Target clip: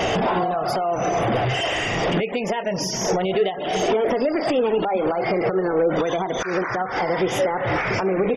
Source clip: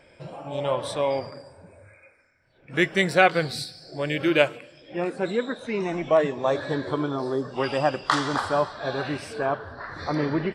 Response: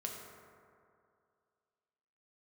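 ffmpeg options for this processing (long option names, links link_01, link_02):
-af "aeval=exprs='val(0)+0.5*0.0473*sgn(val(0))':channel_layout=same,aecho=1:1:20|40:0.168|0.211,acompressor=threshold=-28dB:ratio=8,highshelf=frequency=5800:gain=-9,alimiter=level_in=2.5dB:limit=-24dB:level=0:latency=1:release=156,volume=-2.5dB,bandreject=frequency=330.1:width_type=h:width=4,bandreject=frequency=660.2:width_type=h:width=4,bandreject=frequency=990.3:width_type=h:width=4,bandreject=frequency=1320.4:width_type=h:width=4,bandreject=frequency=1650.5:width_type=h:width=4,bandreject=frequency=1980.6:width_type=h:width=4,bandreject=frequency=2310.7:width_type=h:width=4,bandreject=frequency=2640.8:width_type=h:width=4,bandreject=frequency=2970.9:width_type=h:width=4,bandreject=frequency=3301:width_type=h:width=4,bandreject=frequency=3631.1:width_type=h:width=4,bandreject=frequency=3961.2:width_type=h:width=4,bandreject=frequency=4291.3:width_type=h:width=4,bandreject=frequency=4621.4:width_type=h:width=4,bandreject=frequency=4951.5:width_type=h:width=4,bandreject=frequency=5281.6:width_type=h:width=4,bandreject=frequency=5611.7:width_type=h:width=4,bandreject=frequency=5941.8:width_type=h:width=4,bandreject=frequency=6271.9:width_type=h:width=4,bandreject=frequency=6602:width_type=h:width=4,bandreject=frequency=6932.1:width_type=h:width=4,bandreject=frequency=7262.2:width_type=h:width=4,bandreject=frequency=7592.3:width_type=h:width=4,bandreject=frequency=7922.4:width_type=h:width=4,bandreject=frequency=8252.5:width_type=h:width=4,bandreject=frequency=8582.6:width_type=h:width=4,bandreject=frequency=8912.7:width_type=h:width=4,bandreject=frequency=9242.8:width_type=h:width=4,bandreject=frequency=9572.9:width_type=h:width=4,afftfilt=real='re*gte(hypot(re,im),0.01)':imag='im*gte(hypot(re,im),0.01)':win_size=1024:overlap=0.75,asuperstop=centerf=3300:order=4:qfactor=5.6,asetrate=55566,aresample=44100,equalizer=frequency=440:width=1.1:gain=6.5,volume=9dB"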